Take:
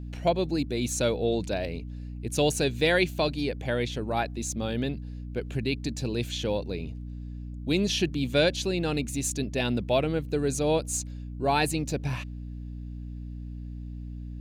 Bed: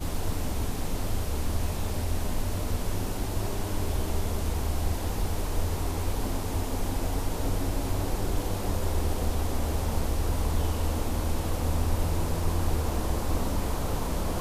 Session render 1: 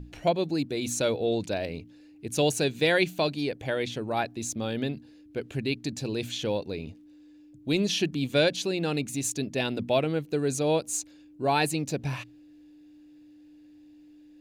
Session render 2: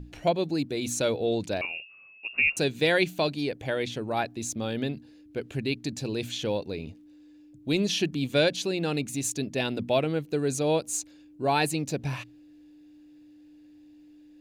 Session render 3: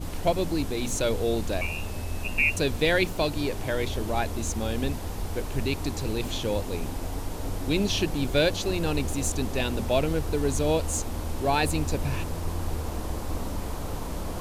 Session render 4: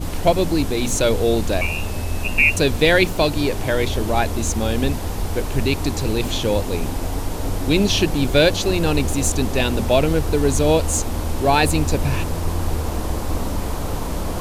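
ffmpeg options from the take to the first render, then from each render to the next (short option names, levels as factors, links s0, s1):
-af "bandreject=f=60:t=h:w=6,bandreject=f=120:t=h:w=6,bandreject=f=180:t=h:w=6,bandreject=f=240:t=h:w=6"
-filter_complex "[0:a]asettb=1/sr,asplit=3[s0][s1][s2];[s0]atrim=end=1.614[s3];[s1]atrim=start=1.61:end=2.57,asetpts=PTS-STARTPTS,afade=t=in:d=0.004:c=qsin,afade=t=out:st=0.956:d=0.004:c=qsin,lowpass=f=2500:t=q:w=0.5098,lowpass=f=2500:t=q:w=0.6013,lowpass=f=2500:t=q:w=0.9,lowpass=f=2500:t=q:w=2.563,afreqshift=-2900[s4];[s2]atrim=start=2.566[s5];[s3][s4]acrossfade=d=0.004:c1=hsin:c2=qsin[s6];[s6][s5]acrossfade=d=0.004:c1=qsin:c2=hsin"
-filter_complex "[1:a]volume=0.668[s0];[0:a][s0]amix=inputs=2:normalize=0"
-af "volume=2.51,alimiter=limit=0.708:level=0:latency=1"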